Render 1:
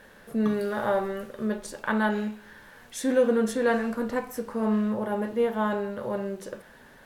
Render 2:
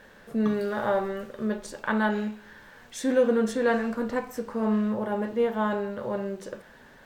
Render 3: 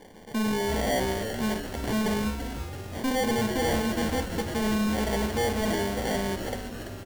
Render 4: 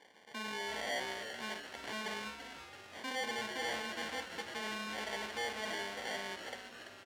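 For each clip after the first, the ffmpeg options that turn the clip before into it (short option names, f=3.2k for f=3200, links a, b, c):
-af "equalizer=f=11k:w=3.2:g=-14"
-filter_complex "[0:a]acrusher=samples=34:mix=1:aa=0.000001,volume=26.5dB,asoftclip=hard,volume=-26.5dB,asplit=2[a][b];[b]asplit=8[c][d][e][f][g][h][i][j];[c]adelay=336,afreqshift=-150,volume=-8dB[k];[d]adelay=672,afreqshift=-300,volume=-12.2dB[l];[e]adelay=1008,afreqshift=-450,volume=-16.3dB[m];[f]adelay=1344,afreqshift=-600,volume=-20.5dB[n];[g]adelay=1680,afreqshift=-750,volume=-24.6dB[o];[h]adelay=2016,afreqshift=-900,volume=-28.8dB[p];[i]adelay=2352,afreqshift=-1050,volume=-32.9dB[q];[j]adelay=2688,afreqshift=-1200,volume=-37.1dB[r];[k][l][m][n][o][p][q][r]amix=inputs=8:normalize=0[s];[a][s]amix=inputs=2:normalize=0,volume=2.5dB"
-af "bandpass=f=2.4k:t=q:w=0.68:csg=0,volume=-4.5dB"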